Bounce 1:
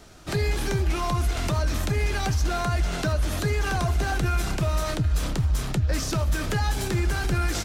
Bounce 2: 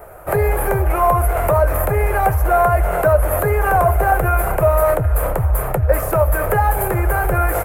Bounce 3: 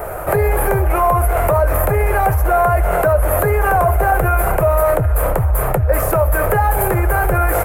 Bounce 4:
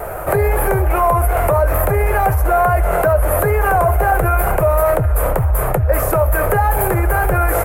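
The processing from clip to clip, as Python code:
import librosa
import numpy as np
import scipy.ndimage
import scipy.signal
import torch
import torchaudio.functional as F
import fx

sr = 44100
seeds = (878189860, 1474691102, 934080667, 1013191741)

y1 = fx.curve_eq(x, sr, hz=(100.0, 270.0, 520.0, 1300.0, 2300.0, 3600.0, 5800.0, 12000.0), db=(0, -11, 13, 5, -3, -22, -24, 12))
y1 = y1 * 10.0 ** (6.5 / 20.0)
y2 = fx.env_flatten(y1, sr, amount_pct=50)
y2 = y2 * 10.0 ** (-1.5 / 20.0)
y3 = fx.wow_flutter(y2, sr, seeds[0], rate_hz=2.1, depth_cents=29.0)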